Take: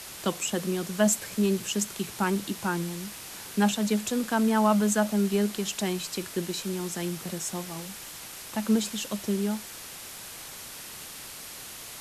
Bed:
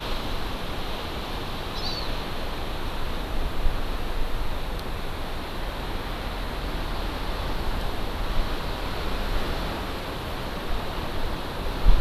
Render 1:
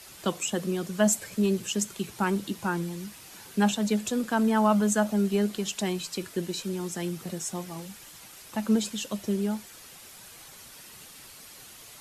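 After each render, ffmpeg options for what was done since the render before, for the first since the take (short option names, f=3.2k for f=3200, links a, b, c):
-af "afftdn=nr=8:nf=-42"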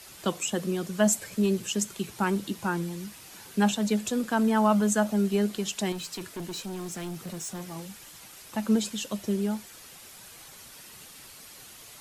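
-filter_complex "[0:a]asettb=1/sr,asplit=3[a][b][c];[a]atrim=end=5.924[d];[b]atrim=start=5.92:end=7.75,asetpts=PTS-STARTPTS,afade=t=in:d=0.004:c=qsin,afade=t=out:st=1.826:d=0.004:c=qsin,asoftclip=type=hard:threshold=-32.5dB[e];[c]atrim=start=7.746[f];[d][e]acrossfade=d=0.004:c1=hsin:c2=qsin[g];[g][f]acrossfade=d=0.004:c1=qsin:c2=hsin"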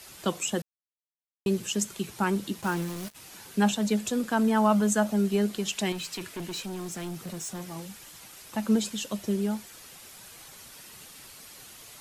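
-filter_complex "[0:a]asplit=3[a][b][c];[a]afade=t=out:st=2.61:d=0.02[d];[b]acrusher=bits=5:mix=0:aa=0.5,afade=t=in:st=2.61:d=0.02,afade=t=out:st=3.14:d=0.02[e];[c]afade=t=in:st=3.14:d=0.02[f];[d][e][f]amix=inputs=3:normalize=0,asettb=1/sr,asplit=3[g][h][i];[g]atrim=end=5.684[j];[h]atrim=start=5.68:end=6.67,asetpts=PTS-STARTPTS,afade=t=in:d=0.004:c=qsin,afade=t=out:st=0.986:d=0.004:c=qsin,equalizer=f=2.5k:w=1.5:g=5[k];[i]atrim=start=6.666[l];[j][k]acrossfade=d=0.004:c1=hsin:c2=qsin[m];[m][l]acrossfade=d=0.004:c1=qsin:c2=hsin,asplit=3[n][o][p];[n]atrim=end=0.62,asetpts=PTS-STARTPTS,afade=t=out:st=0.616:d=0.004:c=hsin[q];[o]atrim=start=0.62:end=1.46,asetpts=PTS-STARTPTS,volume=0[r];[p]atrim=start=1.46,asetpts=PTS-STARTPTS,afade=t=in:d=0.004:c=hsin[s];[q][r][s]concat=n=3:v=0:a=1"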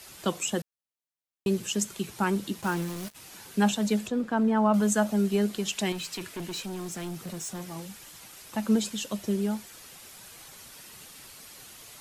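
-filter_complex "[0:a]asettb=1/sr,asplit=3[a][b][c];[a]atrim=end=4.074[d];[b]atrim=start=4.07:end=4.74,asetpts=PTS-STARTPTS,afade=t=in:d=0.004:c=qsin,afade=t=out:st=0.666:d=0.004:c=qsin,lowpass=f=1.4k:p=1[e];[c]atrim=start=4.736[f];[d][e]acrossfade=d=0.004:c1=hsin:c2=qsin[g];[g][f]acrossfade=d=0.004:c1=qsin:c2=hsin"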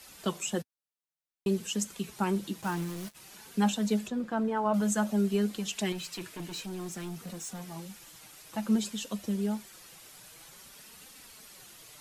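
-af "flanger=delay=3.7:depth=3.2:regen=-30:speed=0.54:shape=triangular"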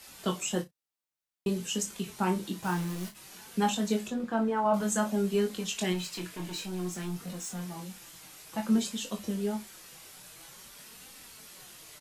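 -filter_complex "[0:a]asplit=2[a][b];[b]adelay=34,volume=-12dB[c];[a][c]amix=inputs=2:normalize=0,aecho=1:1:22|55:0.562|0.141"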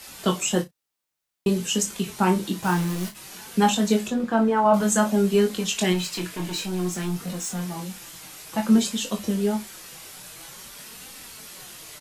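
-af "volume=8dB"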